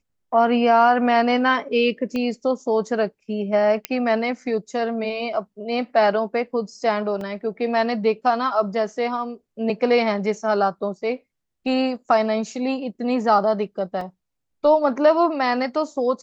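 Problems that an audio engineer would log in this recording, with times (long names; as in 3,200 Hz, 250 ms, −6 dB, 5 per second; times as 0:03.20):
0:02.16: click −16 dBFS
0:03.85: click −7 dBFS
0:07.21: drop-out 2.2 ms
0:14.01: drop-out 3 ms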